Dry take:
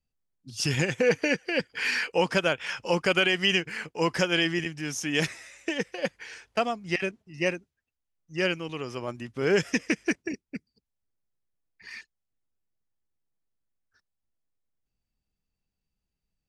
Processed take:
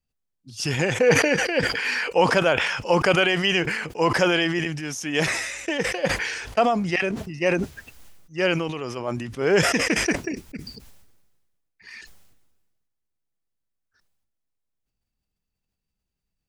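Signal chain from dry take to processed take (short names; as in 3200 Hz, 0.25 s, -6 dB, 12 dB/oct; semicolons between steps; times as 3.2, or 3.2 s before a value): dynamic EQ 750 Hz, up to +7 dB, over -39 dBFS, Q 0.75; sustainer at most 40 dB/s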